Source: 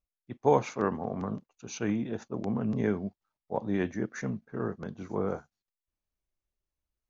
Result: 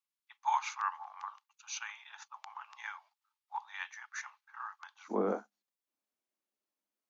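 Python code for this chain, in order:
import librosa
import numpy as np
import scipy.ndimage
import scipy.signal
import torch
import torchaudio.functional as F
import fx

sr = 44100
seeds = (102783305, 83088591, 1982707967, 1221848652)

y = fx.cheby_ripple_highpass(x, sr, hz=fx.steps((0.0, 830.0), (5.08, 200.0)), ripple_db=3)
y = y * librosa.db_to_amplitude(2.0)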